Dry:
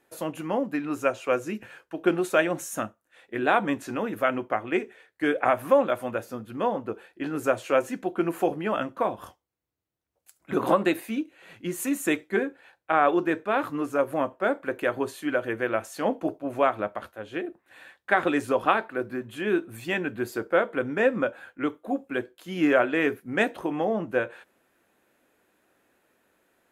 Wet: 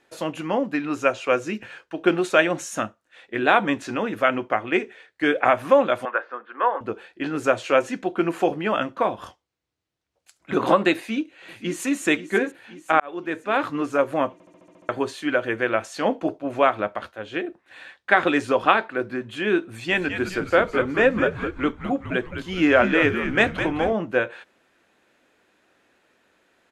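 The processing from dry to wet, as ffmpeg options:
-filter_complex "[0:a]asettb=1/sr,asplit=3[s0][s1][s2];[s0]atrim=end=6.054[s3];[s1]atrim=start=6.05:end=6.81,asetpts=PTS-STARTPTS,afade=t=in:d=0.004:c=qsin,afade=t=out:st=0.756:d=0.004:c=qsin,highpass=f=410:w=0.5412,highpass=f=410:w=1.3066,equalizer=f=430:t=q:w=4:g=-3,equalizer=f=630:t=q:w=4:g=-4,equalizer=f=1100:t=q:w=4:g=8,equalizer=f=1600:t=q:w=4:g=9,equalizer=f=2500:t=q:w=4:g=-4,lowpass=f=2600:w=0.5412,lowpass=f=2600:w=1.3066[s4];[s2]atrim=start=6.806[s5];[s3][s4]acrossfade=d=0.004:c1=hsin:c2=qsin[s6];[s6][s5]acrossfade=d=0.004:c1=qsin:c2=hsin,asplit=2[s7][s8];[s8]afade=t=in:st=10.95:d=0.01,afade=t=out:st=11.98:d=0.01,aecho=0:1:530|1060|1590|2120|2650|3180|3710:0.223872|0.134323|0.080594|0.0483564|0.0290138|0.0174083|0.010445[s9];[s7][s9]amix=inputs=2:normalize=0,asettb=1/sr,asplit=3[s10][s11][s12];[s10]atrim=end=19.684[s13];[s11]atrim=start=19.68:end=23.93,asetpts=PTS-STARTPTS,afade=t=in:d=0.004:c=qsin,afade=t=out:st=4.246:d=0.004:c=qsin,asplit=7[s14][s15][s16][s17][s18][s19][s20];[s15]adelay=208,afreqshift=-95,volume=0.376[s21];[s16]adelay=416,afreqshift=-190,volume=0.202[s22];[s17]adelay=624,afreqshift=-285,volume=0.11[s23];[s18]adelay=832,afreqshift=-380,volume=0.0589[s24];[s19]adelay=1040,afreqshift=-475,volume=0.032[s25];[s20]adelay=1248,afreqshift=-570,volume=0.0172[s26];[s14][s21][s22][s23][s24][s25][s26]amix=inputs=7:normalize=0,atrim=end_sample=187425[s27];[s12]atrim=start=23.926[s28];[s13][s27]acrossfade=d=0.004:c1=hsin:c2=qsin[s29];[s29][s28]acrossfade=d=0.004:c1=qsin:c2=hsin,asplit=10[s30][s31][s32][s33][s34][s35][s36][s37][s38][s39];[s30]atrim=end=13,asetpts=PTS-STARTPTS,afade=t=out:st=12.996:d=0.004:c=hsin[s40];[s31]atrim=start=13:end=14.402,asetpts=PTS-STARTPTS,afade=t=in:d=0.64[s41];[s32]atrim=start=14.328:end=14.402[s42];[s33]atrim=start=14.328:end=14.402[s43];[s34]atrim=start=14.328:end=14.402[s44];[s35]atrim=start=14.328:end=14.402[s45];[s36]atrim=start=14.328:end=14.402[s46];[s37]atrim=start=14.328:end=14.402[s47];[s38]atrim=start=14.328:end=14.402[s48];[s39]atrim=start=14.888[s49];[s40][s41]concat=n=2:v=0:a=1[s50];[s50][s42]acrossfade=d=0.004:c1=hsin:c2=hsin[s51];[s51][s43]acrossfade=d=0.004:c1=hsin:c2=hsin[s52];[s52][s44]acrossfade=d=0.004:c1=hsin:c2=hsin[s53];[s53][s45]acrossfade=d=0.004:c1=hsin:c2=hsin[s54];[s54][s46]acrossfade=d=0.004:c1=hsin:c2=hsin[s55];[s55][s47]acrossfade=d=0.004:c1=hsin:c2=hsin[s56];[s56][s48]acrossfade=d=0.004:c1=hsin:c2=hsin[s57];[s57][s49]acrossfade=d=0.004:c1=hsin:c2=hsin,lowpass=5100,highshelf=f=2400:g=8.5,volume=1.41"

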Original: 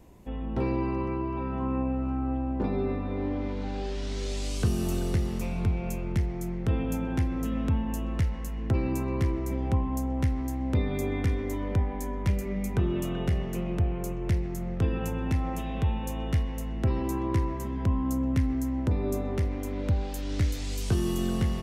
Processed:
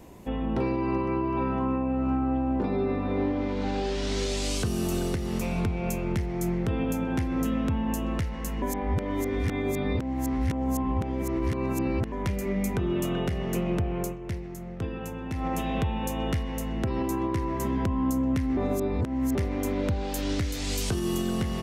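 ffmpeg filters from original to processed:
-filter_complex "[0:a]asplit=7[s0][s1][s2][s3][s4][s5][s6];[s0]atrim=end=8.622[s7];[s1]atrim=start=8.618:end=12.122,asetpts=PTS-STARTPTS,areverse[s8];[s2]atrim=start=12.118:end=14.18,asetpts=PTS-STARTPTS,afade=t=out:st=1.882:d=0.18:silence=0.298538[s9];[s3]atrim=start=14.18:end=15.35,asetpts=PTS-STARTPTS,volume=0.299[s10];[s4]atrim=start=15.35:end=18.572,asetpts=PTS-STARTPTS,afade=t=in:d=0.18:silence=0.298538[s11];[s5]atrim=start=18.568:end=19.352,asetpts=PTS-STARTPTS,areverse[s12];[s6]atrim=start=19.348[s13];[s7][s8]acrossfade=d=0.004:c1=hsin:c2=hsin[s14];[s9][s10][s11]concat=n=3:v=0:a=1[s15];[s14][s15]acrossfade=d=0.004:c1=hsin:c2=hsin[s16];[s16][s12]acrossfade=d=0.004:c1=hsin:c2=hsin[s17];[s17][s13]acrossfade=d=0.004:c1=hsin:c2=hsin,lowshelf=f=95:g=-9.5,alimiter=level_in=1.33:limit=0.0631:level=0:latency=1:release=304,volume=0.75,volume=2.51"

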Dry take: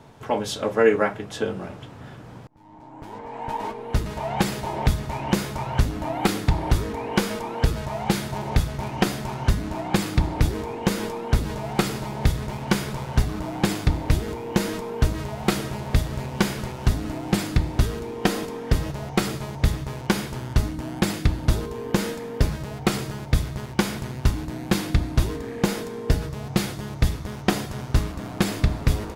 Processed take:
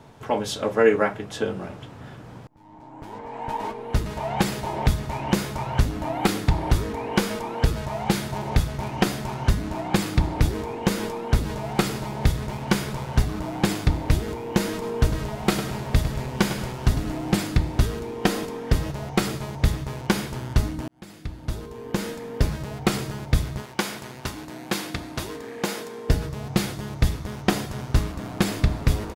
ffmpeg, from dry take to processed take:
-filter_complex "[0:a]asplit=3[s0][s1][s2];[s0]afade=t=out:st=14.81:d=0.02[s3];[s1]aecho=1:1:103|206|309|412:0.299|0.113|0.0431|0.0164,afade=t=in:st=14.81:d=0.02,afade=t=out:st=17.38:d=0.02[s4];[s2]afade=t=in:st=17.38:d=0.02[s5];[s3][s4][s5]amix=inputs=3:normalize=0,asettb=1/sr,asplit=3[s6][s7][s8];[s6]atrim=end=23.624[s9];[s7]atrim=start=23.62:end=26.09,asetpts=PTS-STARTPTS,afade=t=in:d=0.004:c=qsin,afade=t=out:st=2.466:d=0.004:c=qsin,highpass=f=450:p=1[s10];[s8]atrim=start=26.086[s11];[s9][s10]acrossfade=d=0.004:c1=hsin:c2=qsin[s12];[s12][s11]acrossfade=d=0.004:c1=qsin:c2=hsin,asplit=2[s13][s14];[s13]atrim=end=20.88,asetpts=PTS-STARTPTS,afade=t=out:st=20.876:d=0.004:c=hsin[s15];[s14]atrim=start=20.88,asetpts=PTS-STARTPTS,afade=t=in:d=1.7[s16];[s15][s16]concat=n=2:v=0:a=1"

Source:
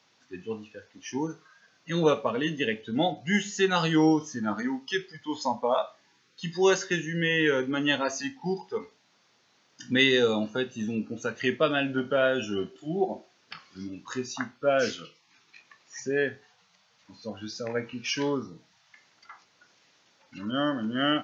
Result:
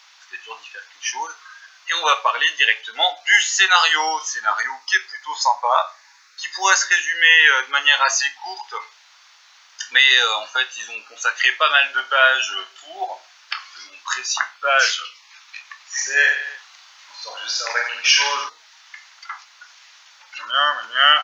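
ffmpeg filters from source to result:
-filter_complex "[0:a]asettb=1/sr,asplit=3[s0][s1][s2];[s0]atrim=end=4.634[s3];[s1]atrim=start=4.63:end=6.97,asetpts=PTS-STARTPTS,afade=t=in:d=0.004:c=qsin,afade=t=out:st=2.336:d=0.004:c=qsin,equalizer=f=3100:t=o:w=0.42:g=-11[s4];[s2]atrim=start=6.966[s5];[s3][s4]acrossfade=d=0.004:c1=hsin:c2=qsin[s6];[s6][s5]acrossfade=d=0.004:c1=qsin:c2=hsin,asplit=3[s7][s8][s9];[s7]afade=t=out:st=15.97:d=0.02[s10];[s8]aecho=1:1:40|88|145.6|214.7|297.7:0.631|0.398|0.251|0.158|0.1,afade=t=in:st=15.97:d=0.02,afade=t=out:st=18.48:d=0.02[s11];[s9]afade=t=in:st=18.48:d=0.02[s12];[s10][s11][s12]amix=inputs=3:normalize=0,highpass=f=940:w=0.5412,highpass=f=940:w=1.3066,alimiter=level_in=7.08:limit=0.891:release=50:level=0:latency=1,volume=0.891"

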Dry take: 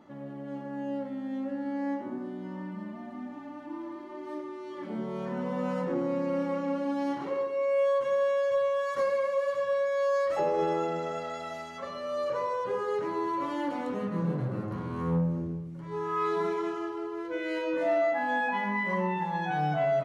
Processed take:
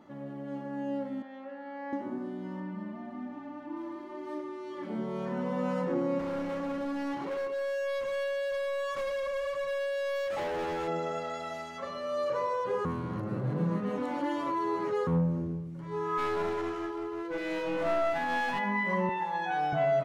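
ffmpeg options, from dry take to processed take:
-filter_complex "[0:a]asettb=1/sr,asplit=3[s0][s1][s2];[s0]atrim=end=1.224[s3];[s1]atrim=start=1.22:end=1.93,asetpts=PTS-STARTPTS,afade=t=in:d=0.004:c=qsin,afade=t=out:st=0.706:d=0.004:c=qsin,highpass=610,lowpass=3300[s4];[s2]atrim=start=1.926[s5];[s3][s4]acrossfade=d=0.004:c1=hsin:c2=qsin[s6];[s6][s5]acrossfade=d=0.004:c1=qsin:c2=hsin,asettb=1/sr,asplit=3[s7][s8][s9];[s7]atrim=end=2.604[s10];[s8]atrim=start=2.6:end=3.77,asetpts=PTS-STARTPTS,afade=t=in:d=0.004:c=qsin,afade=t=out:st=1.166:d=0.004:c=qsin,lowpass=f=3600:p=1[s11];[s9]atrim=start=3.766[s12];[s10][s11]acrossfade=d=0.004:c1=hsin:c2=qsin[s13];[s13][s12]acrossfade=d=0.004:c1=qsin:c2=hsin,asettb=1/sr,asplit=3[s14][s15][s16];[s14]atrim=end=6.194[s17];[s15]atrim=start=6.19:end=10.88,asetpts=PTS-STARTPTS,afade=t=in:d=0.004:c=qsin,afade=t=out:st=4.686:d=0.004:c=qsin,asoftclip=type=hard:threshold=0.0282[s18];[s16]atrim=start=10.876[s19];[s17][s18]acrossfade=d=0.004:c1=hsin:c2=qsin[s20];[s20][s19]acrossfade=d=0.004:c1=qsin:c2=hsin,asplit=3[s21][s22][s23];[s21]afade=t=out:st=16.17:d=0.02[s24];[s22]aeval=exprs='clip(val(0),-1,0.0224)':c=same,afade=t=in:st=16.17:d=0.02,afade=t=out:st=18.58:d=0.02[s25];[s23]afade=t=in:st=18.58:d=0.02[s26];[s24][s25][s26]amix=inputs=3:normalize=0,asettb=1/sr,asplit=3[s27][s28][s29];[s27]atrim=end=19.094[s30];[s28]atrim=start=19.09:end=19.73,asetpts=PTS-STARTPTS,afade=t=in:d=0.004:c=qsin,afade=t=out:st=0.636:d=0.004:c=qsin,highpass=360[s31];[s29]atrim=start=19.726[s32];[s30][s31]acrossfade=d=0.004:c1=hsin:c2=qsin[s33];[s33][s32]acrossfade=d=0.004:c1=qsin:c2=hsin,asplit=3[s34][s35][s36];[s34]atrim=end=12.852[s37];[s35]atrim=start=12.848:end=15.072,asetpts=PTS-STARTPTS,areverse[s38];[s36]atrim=start=15.068[s39];[s37][s38]acrossfade=d=0.004:c1=hsin:c2=hsin[s40];[s40][s39]acrossfade=d=0.004:c1=hsin:c2=hsin"

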